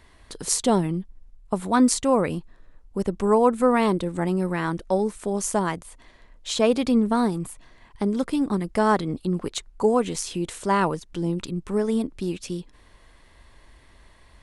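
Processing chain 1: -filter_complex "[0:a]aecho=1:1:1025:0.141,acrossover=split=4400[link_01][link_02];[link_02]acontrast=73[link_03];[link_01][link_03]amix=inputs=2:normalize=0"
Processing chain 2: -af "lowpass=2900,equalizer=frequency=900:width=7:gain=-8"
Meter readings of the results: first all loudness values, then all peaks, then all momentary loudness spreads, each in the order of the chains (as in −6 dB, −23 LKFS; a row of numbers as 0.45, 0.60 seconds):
−23.0, −24.5 LKFS; −2.0, −7.5 dBFS; 16, 13 LU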